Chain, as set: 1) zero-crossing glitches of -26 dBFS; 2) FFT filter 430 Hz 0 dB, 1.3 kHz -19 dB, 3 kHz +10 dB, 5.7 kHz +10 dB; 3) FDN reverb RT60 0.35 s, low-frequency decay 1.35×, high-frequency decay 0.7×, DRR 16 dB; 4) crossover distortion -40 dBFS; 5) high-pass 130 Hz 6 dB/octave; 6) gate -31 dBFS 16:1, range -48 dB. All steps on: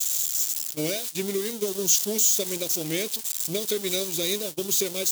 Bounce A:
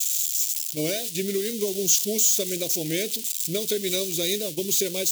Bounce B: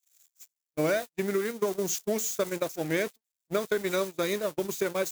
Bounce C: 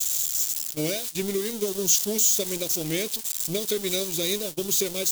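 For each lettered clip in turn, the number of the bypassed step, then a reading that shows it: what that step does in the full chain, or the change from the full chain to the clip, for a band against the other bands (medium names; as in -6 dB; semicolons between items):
4, distortion -18 dB; 2, 8 kHz band -13.5 dB; 5, 125 Hz band +2.0 dB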